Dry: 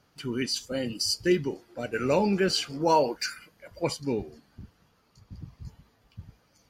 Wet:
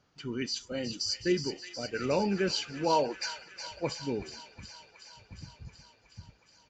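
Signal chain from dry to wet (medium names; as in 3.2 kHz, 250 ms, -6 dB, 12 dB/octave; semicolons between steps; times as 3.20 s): on a send: feedback echo behind a high-pass 367 ms, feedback 73%, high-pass 1.7 kHz, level -7.5 dB; on the sum: resampled via 16 kHz; trim -4.5 dB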